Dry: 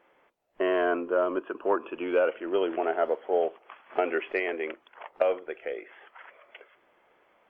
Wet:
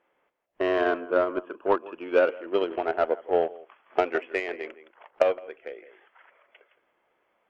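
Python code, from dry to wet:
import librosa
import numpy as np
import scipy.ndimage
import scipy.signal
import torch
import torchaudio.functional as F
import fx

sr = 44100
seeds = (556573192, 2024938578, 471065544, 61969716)

y = x + 10.0 ** (-11.5 / 20.0) * np.pad(x, (int(165 * sr / 1000.0), 0))[:len(x)]
y = fx.cheby_harmonics(y, sr, harmonics=(7,), levels_db=(-27,), full_scale_db=-10.5)
y = fx.upward_expand(y, sr, threshold_db=-38.0, expansion=1.5)
y = y * 10.0 ** (4.5 / 20.0)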